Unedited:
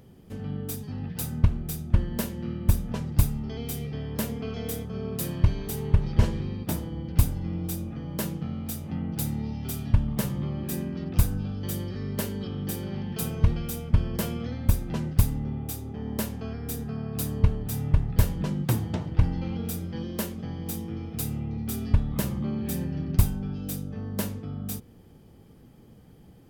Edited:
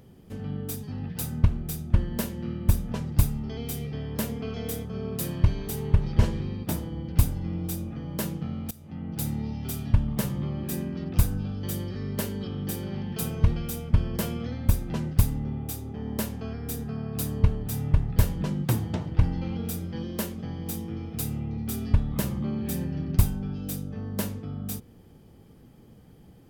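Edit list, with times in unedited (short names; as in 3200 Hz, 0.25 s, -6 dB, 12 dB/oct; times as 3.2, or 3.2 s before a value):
8.71–9.28 fade in, from -18.5 dB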